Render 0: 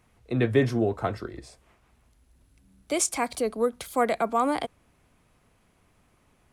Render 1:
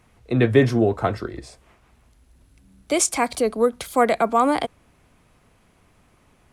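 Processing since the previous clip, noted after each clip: high shelf 12000 Hz -4.5 dB; gain +6 dB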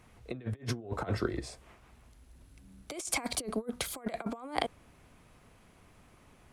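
negative-ratio compressor -26 dBFS, ratio -0.5; gain -8.5 dB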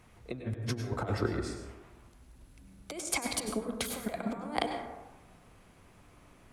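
plate-style reverb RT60 1.1 s, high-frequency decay 0.35×, pre-delay 85 ms, DRR 5 dB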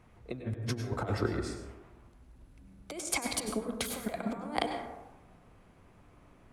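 mismatched tape noise reduction decoder only

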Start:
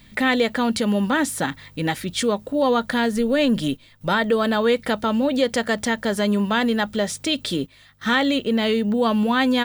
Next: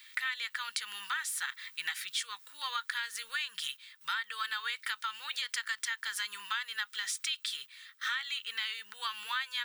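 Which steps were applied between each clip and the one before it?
inverse Chebyshev high-pass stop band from 660 Hz, stop band 40 dB; compressor 6:1, threshold -32 dBFS, peak gain reduction 14 dB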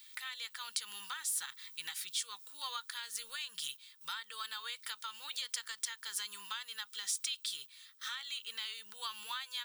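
bell 1800 Hz -14.5 dB 1.6 oct; gain +2.5 dB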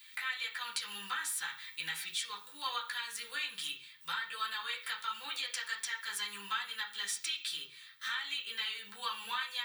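reverb RT60 0.45 s, pre-delay 3 ms, DRR -6.5 dB; gain -2 dB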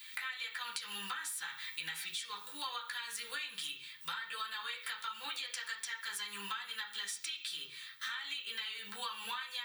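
compressor, threshold -43 dBFS, peak gain reduction 12 dB; gain +5 dB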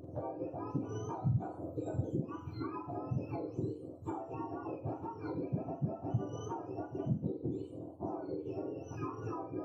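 spectrum mirrored in octaves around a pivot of 1100 Hz; flutter echo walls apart 7.3 m, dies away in 0.22 s; gain -1 dB

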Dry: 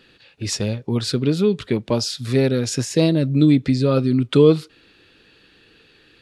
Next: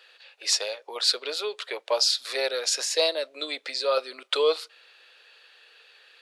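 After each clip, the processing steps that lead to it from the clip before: steep high-pass 530 Hz 36 dB/oct; dynamic EQ 4300 Hz, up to +6 dB, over -42 dBFS, Q 2.5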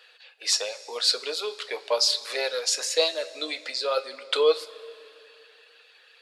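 reverb removal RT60 0.58 s; two-slope reverb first 0.2 s, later 2.7 s, from -18 dB, DRR 7.5 dB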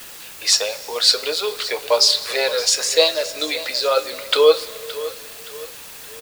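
in parallel at -7 dB: requantised 6-bit, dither triangular; on the sum: feedback echo 0.57 s, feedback 42%, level -15.5 dB; gain +4.5 dB

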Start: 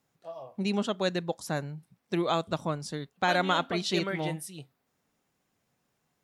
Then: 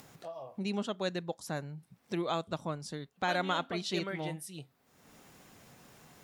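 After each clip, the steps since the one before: upward compressor, threshold -31 dBFS; gain -5.5 dB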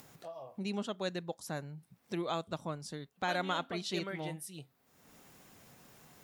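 high shelf 12000 Hz +7 dB; gain -2.5 dB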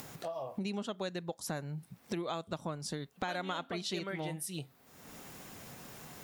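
compressor 5:1, threshold -44 dBFS, peak gain reduction 13.5 dB; gain +9 dB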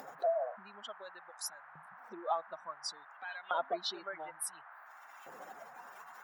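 spectral contrast raised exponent 2.3; LFO high-pass saw up 0.57 Hz 540–2500 Hz; band noise 710–1700 Hz -57 dBFS; gain +2 dB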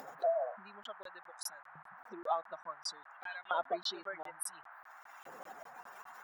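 crackling interface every 0.20 s, samples 1024, zero, from 0.83

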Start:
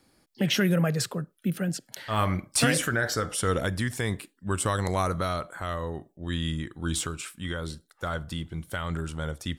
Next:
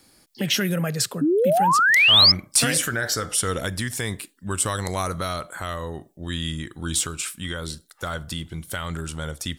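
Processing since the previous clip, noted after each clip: in parallel at +2 dB: compressor, threshold -36 dBFS, peak gain reduction 17 dB; on the sum: painted sound rise, 1.21–2.32, 270–5300 Hz -16 dBFS; high shelf 2900 Hz +9 dB; gain -3 dB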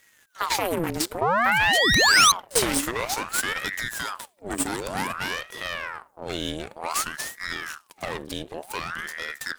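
half-wave rectifier; pre-echo 47 ms -24 dB; ring modulator with a swept carrier 1100 Hz, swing 75%, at 0.54 Hz; gain +3.5 dB

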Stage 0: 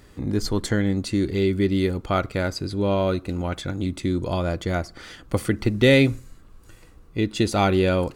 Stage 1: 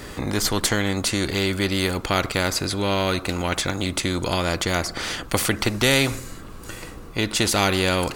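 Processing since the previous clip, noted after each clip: spectral compressor 2:1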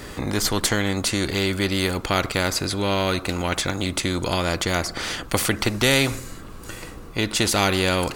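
nothing audible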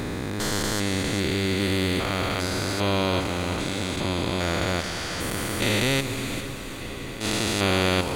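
stepped spectrum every 0.4 s; diffused feedback echo 0.457 s, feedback 65%, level -12 dB; attack slew limiter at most 150 dB/s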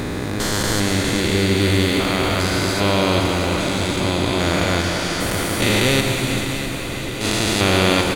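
feedback echo 0.65 s, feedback 55%, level -11 dB; on a send at -5 dB: reverb RT60 1.8 s, pre-delay 0.107 s; on the sum: gain +5 dB

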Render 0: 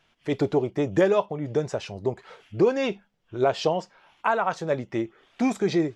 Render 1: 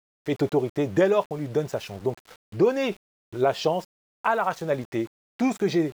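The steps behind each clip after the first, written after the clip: sample gate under -42 dBFS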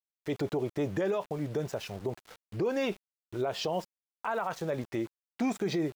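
limiter -19.5 dBFS, peak gain reduction 9 dB; gain -3 dB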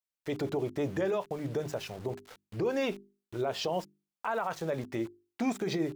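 notches 50/100/150/200/250/300/350/400 Hz

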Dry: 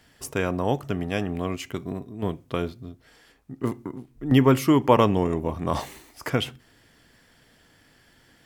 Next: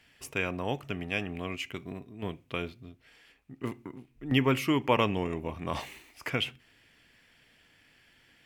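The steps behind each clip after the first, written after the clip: bell 2500 Hz +12.5 dB 0.84 oct; gain -8.5 dB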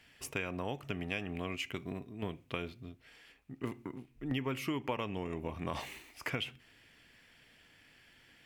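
compressor 5:1, threshold -33 dBFS, peak gain reduction 13 dB

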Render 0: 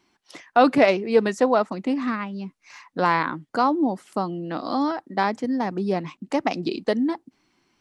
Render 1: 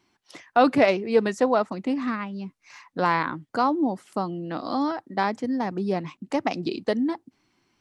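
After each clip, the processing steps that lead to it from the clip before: bell 110 Hz +6.5 dB 0.52 oct; gain -2 dB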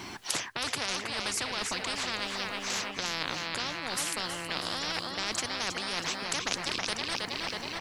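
reverse; compressor 10:1, threshold -30 dBFS, peak gain reduction 17.5 dB; reverse; feedback echo 0.321 s, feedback 53%, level -11.5 dB; spectral compressor 10:1; gain +8 dB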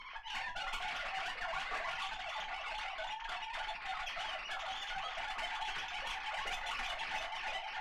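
sine-wave speech; tube stage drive 31 dB, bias 0.8; reverb, pre-delay 4 ms, DRR 0 dB; gain -5.5 dB

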